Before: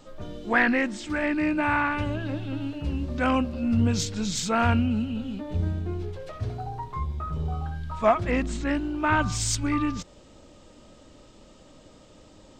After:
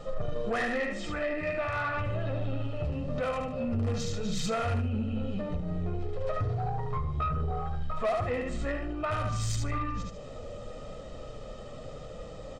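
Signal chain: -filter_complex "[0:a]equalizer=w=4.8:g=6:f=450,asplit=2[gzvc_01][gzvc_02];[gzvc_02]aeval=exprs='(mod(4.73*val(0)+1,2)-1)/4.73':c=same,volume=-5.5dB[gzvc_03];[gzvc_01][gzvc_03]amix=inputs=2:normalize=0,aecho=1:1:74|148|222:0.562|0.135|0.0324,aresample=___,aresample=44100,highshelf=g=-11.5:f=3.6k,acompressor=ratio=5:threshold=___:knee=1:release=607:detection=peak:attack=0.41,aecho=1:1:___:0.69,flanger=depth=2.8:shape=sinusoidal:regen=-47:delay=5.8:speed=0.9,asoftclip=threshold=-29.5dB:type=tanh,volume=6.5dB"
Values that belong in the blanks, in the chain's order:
22050, -27dB, 1.6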